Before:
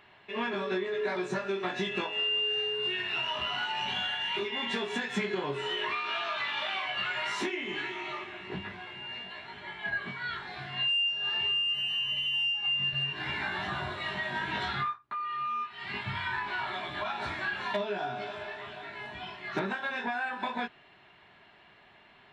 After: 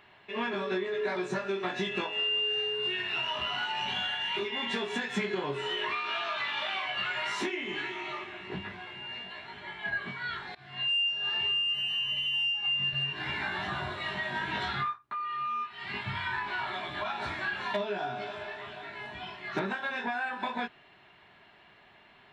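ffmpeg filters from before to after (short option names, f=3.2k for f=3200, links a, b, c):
-filter_complex "[0:a]asplit=2[a][b];[a]atrim=end=10.55,asetpts=PTS-STARTPTS,afade=t=out:st=10.546:d=0.004:c=hsin:silence=0.0794328[c];[b]atrim=start=10.55,asetpts=PTS-STARTPTS,afade=t=in:d=0.38:silence=0.0794328[d];[c][d]concat=n=2:v=0:a=1"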